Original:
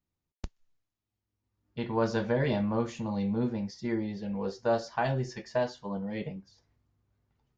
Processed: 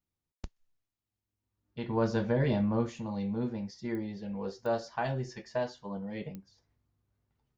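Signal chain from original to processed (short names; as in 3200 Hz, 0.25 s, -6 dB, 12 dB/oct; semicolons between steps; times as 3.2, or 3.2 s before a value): 1.88–2.89 low shelf 360 Hz +6 dB; pops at 3.95/4.66/6.35, -26 dBFS; gain -3.5 dB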